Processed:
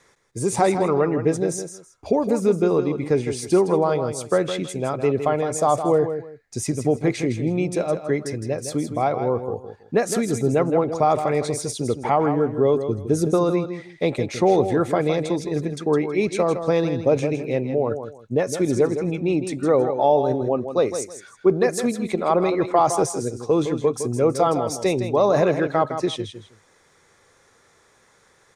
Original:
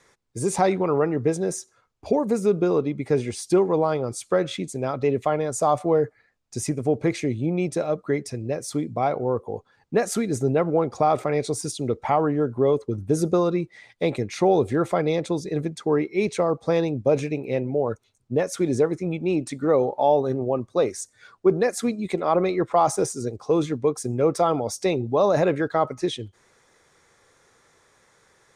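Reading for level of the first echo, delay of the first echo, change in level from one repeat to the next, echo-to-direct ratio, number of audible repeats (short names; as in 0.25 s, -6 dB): -9.0 dB, 0.161 s, -13.0 dB, -9.0 dB, 2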